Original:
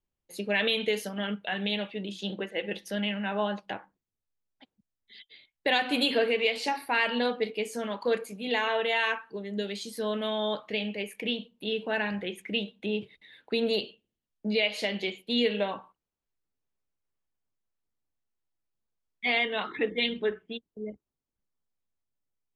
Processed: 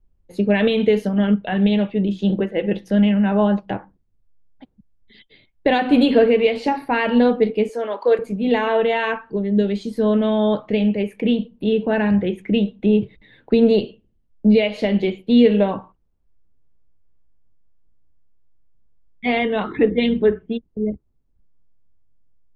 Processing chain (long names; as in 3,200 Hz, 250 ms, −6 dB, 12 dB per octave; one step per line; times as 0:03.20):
0:07.69–0:08.19: high-pass filter 380 Hz 24 dB per octave
spectral tilt −4.5 dB per octave
level +7 dB